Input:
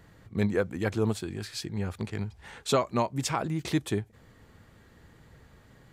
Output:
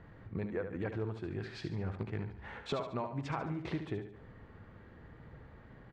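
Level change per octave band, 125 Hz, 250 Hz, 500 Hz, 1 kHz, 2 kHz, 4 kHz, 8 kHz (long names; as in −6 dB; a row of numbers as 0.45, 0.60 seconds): −7.0, −9.0, −9.0, −9.5, −8.0, −12.5, −24.5 decibels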